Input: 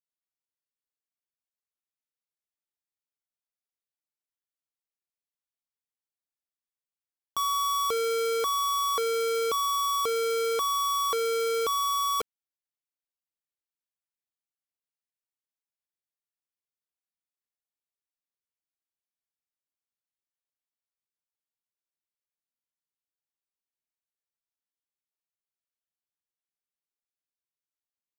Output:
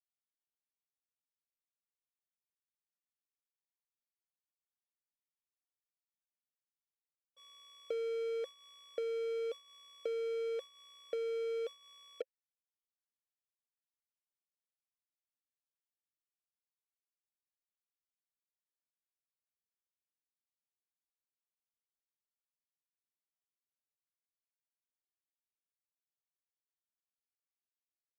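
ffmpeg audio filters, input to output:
-filter_complex "[0:a]alimiter=level_in=13.5dB:limit=-24dB:level=0:latency=1,volume=-13.5dB,asplit=3[a][b][c];[a]bandpass=f=530:t=q:w=8,volume=0dB[d];[b]bandpass=f=1.84k:t=q:w=8,volume=-6dB[e];[c]bandpass=f=2.48k:t=q:w=8,volume=-9dB[f];[d][e][f]amix=inputs=3:normalize=0,acompressor=threshold=-53dB:ratio=6,agate=range=-33dB:threshold=-55dB:ratio=3:detection=peak,volume=18dB"

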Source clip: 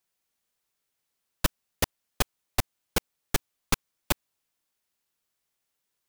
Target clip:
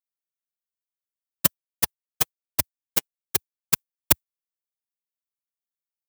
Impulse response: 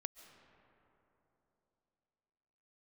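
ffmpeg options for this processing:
-filter_complex "[0:a]highpass=f=77:w=0.5412,highpass=f=77:w=1.3066,aemphasis=mode=production:type=50kf,agate=range=-33dB:threshold=-13dB:ratio=3:detection=peak,asplit=3[a][b][c];[a]afade=t=out:st=1.45:d=0.02[d];[b]flanger=delay=2.4:depth=5.4:regen=21:speed=1.2:shape=sinusoidal,afade=t=in:st=1.45:d=0.02,afade=t=out:st=3.73:d=0.02[e];[c]afade=t=in:st=3.73:d=0.02[f];[d][e][f]amix=inputs=3:normalize=0,volume=5.5dB"

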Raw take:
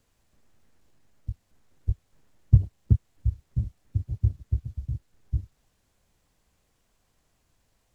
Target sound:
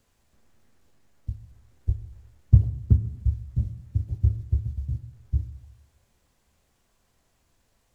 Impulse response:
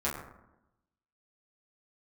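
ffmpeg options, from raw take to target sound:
-filter_complex "[0:a]asplit=2[a][b];[1:a]atrim=start_sample=2205,lowshelf=f=170:g=-7[c];[b][c]afir=irnorm=-1:irlink=0,volume=-12.5dB[d];[a][d]amix=inputs=2:normalize=0"

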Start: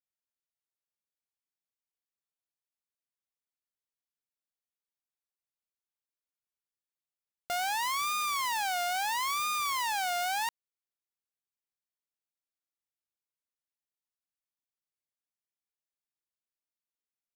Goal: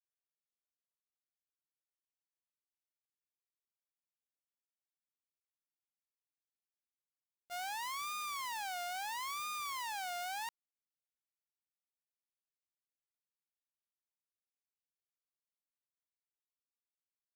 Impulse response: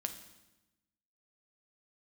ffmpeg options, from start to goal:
-af "agate=range=-33dB:threshold=-19dB:ratio=3:detection=peak,volume=9.5dB"

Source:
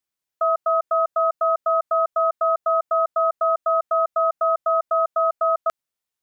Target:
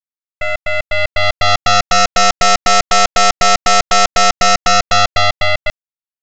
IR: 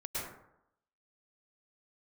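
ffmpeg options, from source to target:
-af "afftfilt=real='real(if(between(b,1,1012),(2*floor((b-1)/92)+1)*92-b,b),0)':imag='imag(if(between(b,1,1012),(2*floor((b-1)/92)+1)*92-b,b),0)*if(between(b,1,1012),-1,1)':win_size=2048:overlap=0.75,dynaudnorm=f=270:g=11:m=14.5dB,aeval=exprs='0.841*(cos(1*acos(clip(val(0)/0.841,-1,1)))-cos(1*PI/2))+0.266*(cos(7*acos(clip(val(0)/0.841,-1,1)))-cos(7*PI/2))+0.335*(cos(8*acos(clip(val(0)/0.841,-1,1)))-cos(8*PI/2))':c=same,aresample=16000,aeval=exprs='sgn(val(0))*max(abs(val(0))-0.0237,0)':c=same,aresample=44100,volume=-4dB"

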